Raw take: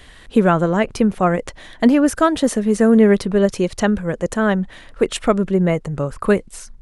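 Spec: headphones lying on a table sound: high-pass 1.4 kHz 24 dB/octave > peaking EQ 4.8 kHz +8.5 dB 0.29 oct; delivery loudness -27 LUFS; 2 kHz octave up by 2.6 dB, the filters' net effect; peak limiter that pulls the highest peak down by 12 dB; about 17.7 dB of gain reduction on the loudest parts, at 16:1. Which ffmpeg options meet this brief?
-af "equalizer=f=2000:t=o:g=4.5,acompressor=threshold=0.0501:ratio=16,alimiter=level_in=1.19:limit=0.0631:level=0:latency=1,volume=0.841,highpass=f=1400:w=0.5412,highpass=f=1400:w=1.3066,equalizer=f=4800:t=o:w=0.29:g=8.5,volume=5.62"

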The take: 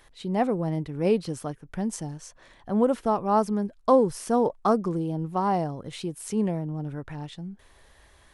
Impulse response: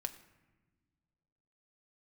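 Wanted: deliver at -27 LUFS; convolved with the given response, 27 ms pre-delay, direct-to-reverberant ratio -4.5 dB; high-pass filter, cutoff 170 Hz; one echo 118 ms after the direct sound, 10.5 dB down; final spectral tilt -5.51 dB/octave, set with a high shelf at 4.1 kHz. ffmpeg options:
-filter_complex "[0:a]highpass=170,highshelf=f=4100:g=-6.5,aecho=1:1:118:0.299,asplit=2[s0][s1];[1:a]atrim=start_sample=2205,adelay=27[s2];[s1][s2]afir=irnorm=-1:irlink=0,volume=1.88[s3];[s0][s3]amix=inputs=2:normalize=0,volume=0.531"

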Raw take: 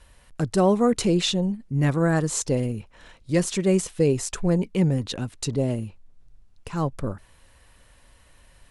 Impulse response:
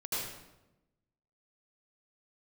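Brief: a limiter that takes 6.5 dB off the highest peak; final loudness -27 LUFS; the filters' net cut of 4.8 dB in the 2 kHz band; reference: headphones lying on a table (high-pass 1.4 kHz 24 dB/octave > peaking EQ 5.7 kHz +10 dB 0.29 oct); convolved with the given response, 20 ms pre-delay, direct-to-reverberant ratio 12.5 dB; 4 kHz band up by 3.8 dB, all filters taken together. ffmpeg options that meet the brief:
-filter_complex "[0:a]equalizer=f=2000:t=o:g=-6.5,equalizer=f=4000:t=o:g=4,alimiter=limit=0.168:level=0:latency=1,asplit=2[s0][s1];[1:a]atrim=start_sample=2205,adelay=20[s2];[s1][s2]afir=irnorm=-1:irlink=0,volume=0.141[s3];[s0][s3]amix=inputs=2:normalize=0,highpass=f=1400:w=0.5412,highpass=f=1400:w=1.3066,equalizer=f=5700:t=o:w=0.29:g=10,volume=1.33"

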